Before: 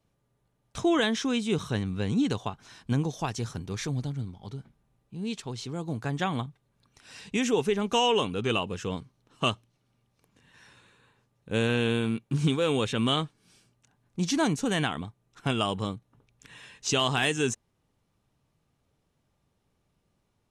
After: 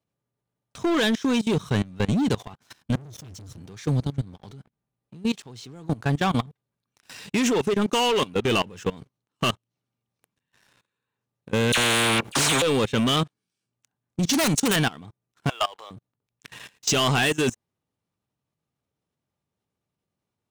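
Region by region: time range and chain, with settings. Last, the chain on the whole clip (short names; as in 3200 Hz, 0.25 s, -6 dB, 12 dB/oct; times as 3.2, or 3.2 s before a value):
2.95–3.58 frequency shift -18 Hz + passive tone stack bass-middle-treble 10-0-1 + sample leveller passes 5
11.72–12.62 high shelf 2700 Hz -6.5 dB + dispersion lows, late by 53 ms, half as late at 1800 Hz + spectral compressor 4:1
14.33–14.76 high shelf 2300 Hz +8.5 dB + wrapped overs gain 17 dB
15.49–15.91 HPF 580 Hz 24 dB/oct + air absorption 71 m
whole clip: HPF 84 Hz 12 dB/oct; sample leveller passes 3; level quantiser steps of 21 dB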